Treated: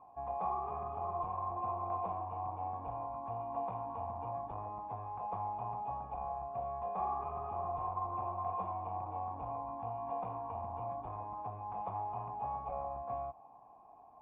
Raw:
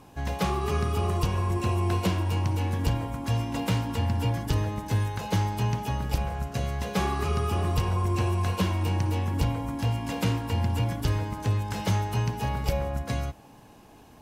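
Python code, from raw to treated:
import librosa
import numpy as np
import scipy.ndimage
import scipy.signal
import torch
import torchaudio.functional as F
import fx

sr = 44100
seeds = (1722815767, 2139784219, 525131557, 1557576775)

y = fx.clip_asym(x, sr, top_db=-26.0, bottom_db=-21.5)
y = fx.formant_cascade(y, sr, vowel='a')
y = y * librosa.db_to_amplitude(6.0)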